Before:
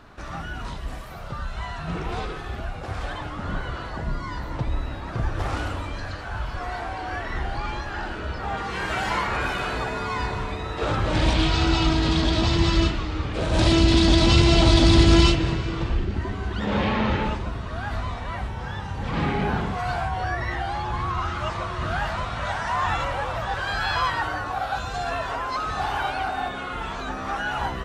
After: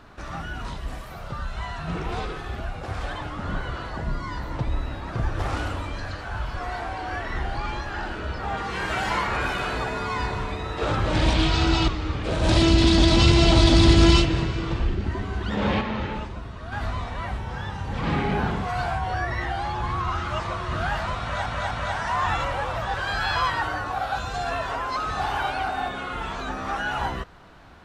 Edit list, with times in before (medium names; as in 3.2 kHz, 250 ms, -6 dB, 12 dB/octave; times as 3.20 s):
11.88–12.98 s: delete
16.91–17.82 s: gain -5.5 dB
22.31–22.56 s: loop, 3 plays